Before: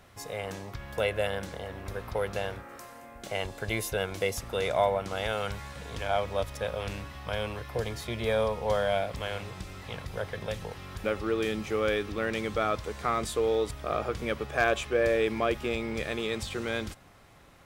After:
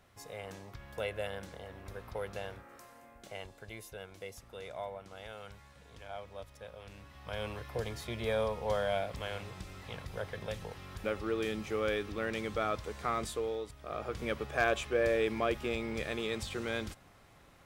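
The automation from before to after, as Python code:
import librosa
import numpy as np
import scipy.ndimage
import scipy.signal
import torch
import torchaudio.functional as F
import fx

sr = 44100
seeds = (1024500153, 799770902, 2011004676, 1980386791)

y = fx.gain(x, sr, db=fx.line((3.08, -8.5), (3.73, -16.0), (6.88, -16.0), (7.46, -5.0), (13.25, -5.0), (13.72, -13.5), (14.23, -4.0)))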